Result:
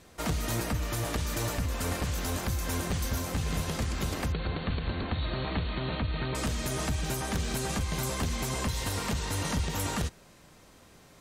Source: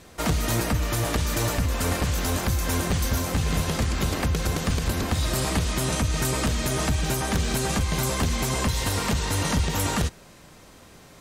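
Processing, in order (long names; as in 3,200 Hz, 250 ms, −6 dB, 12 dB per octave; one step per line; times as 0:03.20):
0:04.32–0:06.35: linear-phase brick-wall low-pass 4,500 Hz
level −6.5 dB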